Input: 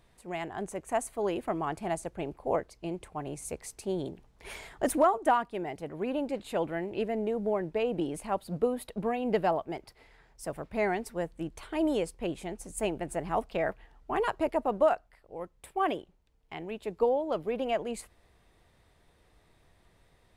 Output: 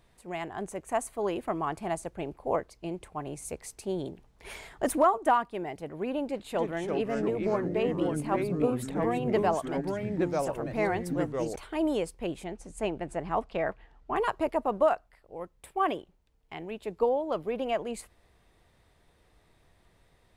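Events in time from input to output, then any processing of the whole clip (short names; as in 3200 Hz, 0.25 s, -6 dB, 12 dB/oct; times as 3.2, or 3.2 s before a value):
6.26–11.56 echoes that change speed 0.289 s, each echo -3 st, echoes 3
12.44–14.16 air absorption 62 m
whole clip: dynamic EQ 1100 Hz, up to +4 dB, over -46 dBFS, Q 3.9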